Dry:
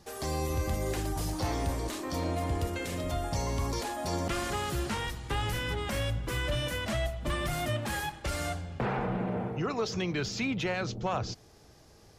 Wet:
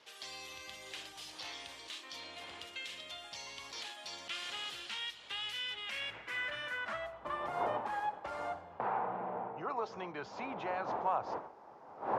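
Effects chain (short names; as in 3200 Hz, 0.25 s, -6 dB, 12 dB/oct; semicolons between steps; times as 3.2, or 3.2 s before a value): wind noise 580 Hz -40 dBFS; band-pass sweep 3200 Hz -> 900 Hz, 5.67–7.44; gain +2.5 dB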